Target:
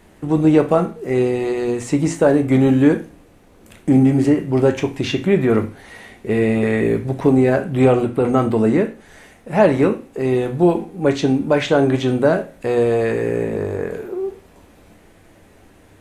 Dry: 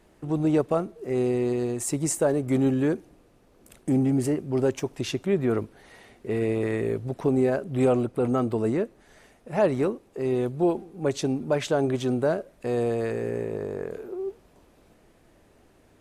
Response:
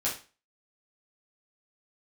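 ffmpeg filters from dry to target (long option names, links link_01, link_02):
-filter_complex "[0:a]acrossover=split=5200[link_01][link_02];[link_02]acompressor=threshold=-56dB:ratio=4:attack=1:release=60[link_03];[link_01][link_03]amix=inputs=2:normalize=0,asplit=2[link_04][link_05];[link_05]equalizer=frequency=400:width_type=o:width=0.33:gain=-10,equalizer=frequency=630:width_type=o:width=0.33:gain=-9,equalizer=frequency=1250:width_type=o:width=0.33:gain=-4,equalizer=frequency=2000:width_type=o:width=0.33:gain=5,equalizer=frequency=5000:width_type=o:width=0.33:gain=-10[link_06];[1:a]atrim=start_sample=2205[link_07];[link_06][link_07]afir=irnorm=-1:irlink=0,volume=-7dB[link_08];[link_04][link_08]amix=inputs=2:normalize=0,volume=6.5dB"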